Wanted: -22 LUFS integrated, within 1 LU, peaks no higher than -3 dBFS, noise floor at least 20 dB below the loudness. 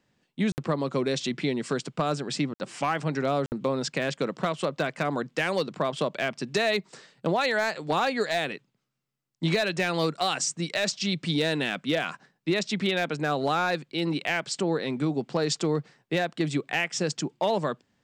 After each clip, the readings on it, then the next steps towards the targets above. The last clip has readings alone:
clipped samples 0.3%; clipping level -16.5 dBFS; dropouts 3; longest dropout 59 ms; loudness -28.0 LUFS; peak level -16.5 dBFS; loudness target -22.0 LUFS
-> clip repair -16.5 dBFS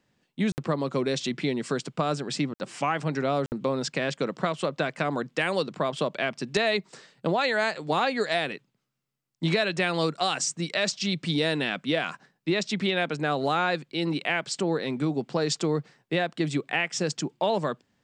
clipped samples 0.0%; dropouts 3; longest dropout 59 ms
-> interpolate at 0.52/2.54/3.46 s, 59 ms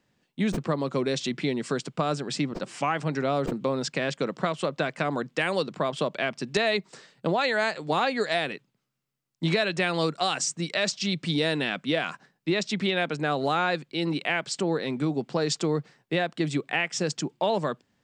dropouts 0; loudness -27.5 LUFS; peak level -9.0 dBFS; loudness target -22.0 LUFS
-> trim +5.5 dB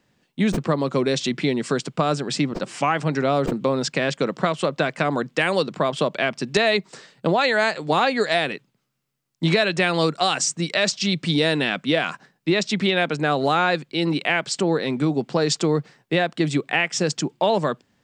loudness -22.0 LUFS; peak level -3.5 dBFS; noise floor -70 dBFS

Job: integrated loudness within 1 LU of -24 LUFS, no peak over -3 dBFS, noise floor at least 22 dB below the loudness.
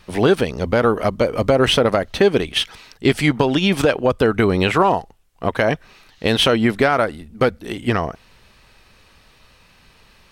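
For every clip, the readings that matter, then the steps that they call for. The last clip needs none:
loudness -18.5 LUFS; peak level -2.5 dBFS; loudness target -24.0 LUFS
-> trim -5.5 dB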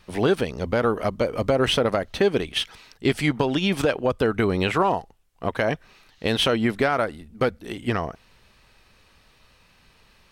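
loudness -24.0 LUFS; peak level -8.0 dBFS; noise floor -58 dBFS

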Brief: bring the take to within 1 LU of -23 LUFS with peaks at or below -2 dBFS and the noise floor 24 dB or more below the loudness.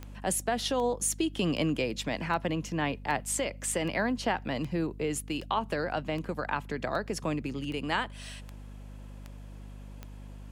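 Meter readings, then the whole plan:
clicks found 14; hum 50 Hz; highest harmonic 250 Hz; hum level -42 dBFS; loudness -31.0 LUFS; peak level -15.0 dBFS; loudness target -23.0 LUFS
-> de-click; hum notches 50/100/150/200/250 Hz; trim +8 dB

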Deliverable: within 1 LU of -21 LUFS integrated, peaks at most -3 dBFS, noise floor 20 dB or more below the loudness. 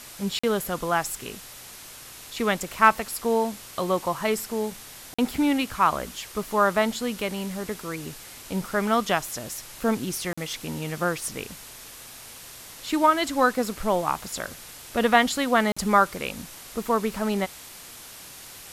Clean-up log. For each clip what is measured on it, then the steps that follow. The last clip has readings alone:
dropouts 4; longest dropout 45 ms; noise floor -44 dBFS; noise floor target -46 dBFS; loudness -25.5 LUFS; peak level -3.5 dBFS; loudness target -21.0 LUFS
-> interpolate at 0.39/5.14/10.33/15.72 s, 45 ms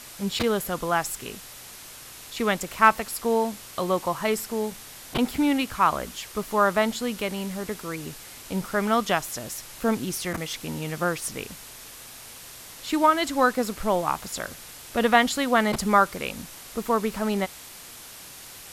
dropouts 0; noise floor -44 dBFS; noise floor target -46 dBFS
-> noise reduction 6 dB, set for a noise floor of -44 dBFS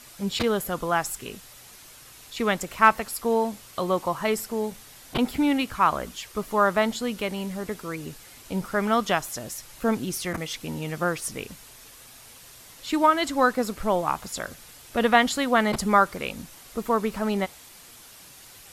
noise floor -48 dBFS; loudness -25.5 LUFS; peak level -3.5 dBFS; loudness target -21.0 LUFS
-> trim +4.5 dB; peak limiter -3 dBFS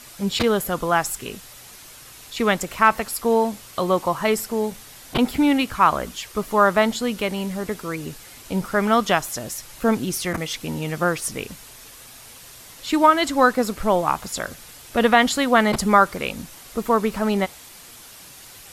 loudness -21.5 LUFS; peak level -3.0 dBFS; noise floor -44 dBFS

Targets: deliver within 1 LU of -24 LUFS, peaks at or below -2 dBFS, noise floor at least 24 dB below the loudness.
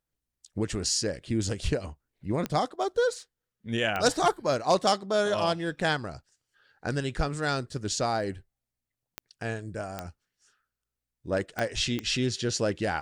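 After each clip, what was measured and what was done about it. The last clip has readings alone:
clicks found 6; loudness -28.5 LUFS; peak level -9.5 dBFS; loudness target -24.0 LUFS
-> de-click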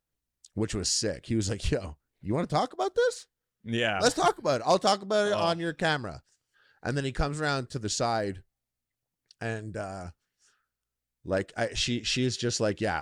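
clicks found 0; loudness -28.5 LUFS; peak level -9.5 dBFS; loudness target -24.0 LUFS
-> trim +4.5 dB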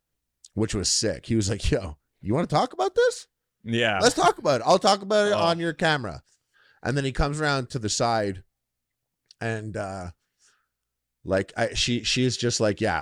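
loudness -24.0 LUFS; peak level -5.0 dBFS; noise floor -83 dBFS

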